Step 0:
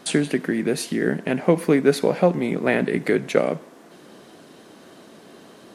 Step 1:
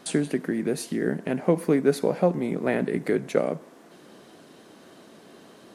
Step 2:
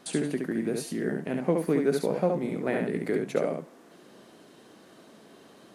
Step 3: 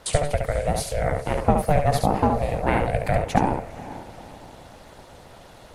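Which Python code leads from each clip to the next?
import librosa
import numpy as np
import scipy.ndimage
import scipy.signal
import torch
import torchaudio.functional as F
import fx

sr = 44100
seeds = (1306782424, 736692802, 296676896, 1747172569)

y1 = fx.dynamic_eq(x, sr, hz=2800.0, q=0.71, threshold_db=-39.0, ratio=4.0, max_db=-6)
y1 = F.gain(torch.from_numpy(y1), -3.5).numpy()
y2 = y1 + 10.0 ** (-4.0 / 20.0) * np.pad(y1, (int(70 * sr / 1000.0), 0))[:len(y1)]
y2 = F.gain(torch.from_numpy(y2), -4.5).numpy()
y3 = fx.echo_diffused(y2, sr, ms=478, feedback_pct=41, wet_db=-15)
y3 = y3 * np.sin(2.0 * np.pi * 290.0 * np.arange(len(y3)) / sr)
y3 = fx.hpss(y3, sr, part='percussive', gain_db=6)
y3 = F.gain(torch.from_numpy(y3), 6.0).numpy()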